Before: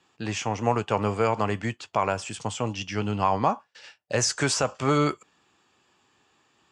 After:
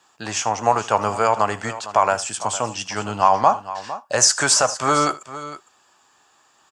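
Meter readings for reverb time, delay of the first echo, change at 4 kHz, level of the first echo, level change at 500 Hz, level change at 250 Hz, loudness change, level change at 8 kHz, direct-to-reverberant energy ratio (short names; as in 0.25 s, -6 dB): none, 78 ms, +8.0 dB, -18.5 dB, +4.5 dB, -1.5 dB, +7.0 dB, +11.5 dB, none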